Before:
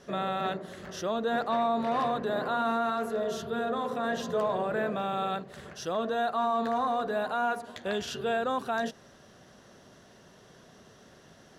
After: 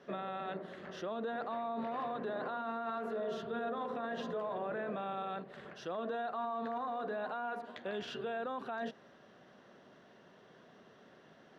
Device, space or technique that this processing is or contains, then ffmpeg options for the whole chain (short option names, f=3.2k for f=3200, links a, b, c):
DJ mixer with the lows and highs turned down: -filter_complex "[0:a]acrossover=split=150 3800:gain=0.158 1 0.1[a][b][c];[a][b][c]amix=inputs=3:normalize=0,alimiter=level_in=3dB:limit=-24dB:level=0:latency=1:release=38,volume=-3dB,volume=-3.5dB"